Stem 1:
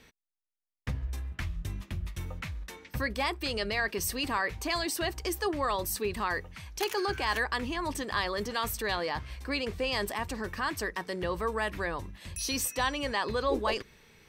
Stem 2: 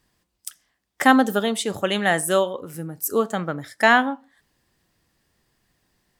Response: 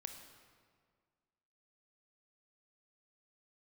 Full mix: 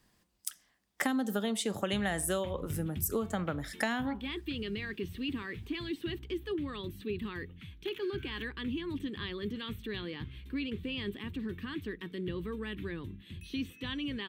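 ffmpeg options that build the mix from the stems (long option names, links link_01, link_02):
-filter_complex "[0:a]highpass=97,acrossover=split=4500[link_01][link_02];[link_02]acompressor=threshold=-47dB:ratio=4:attack=1:release=60[link_03];[link_01][link_03]amix=inputs=2:normalize=0,firequalizer=gain_entry='entry(280,0);entry(400,-5);entry(630,-28);entry(1300,-16);entry(3400,-3);entry(4900,-24);entry(15000,-9)':delay=0.05:min_phase=1,adelay=1050,volume=2.5dB[link_04];[1:a]equalizer=frequency=210:width_type=o:width=0.39:gain=4,acrossover=split=340|3000[link_05][link_06][link_07];[link_06]acompressor=threshold=-21dB:ratio=6[link_08];[link_05][link_08][link_07]amix=inputs=3:normalize=0,volume=-1.5dB[link_09];[link_04][link_09]amix=inputs=2:normalize=0,acompressor=threshold=-30dB:ratio=4"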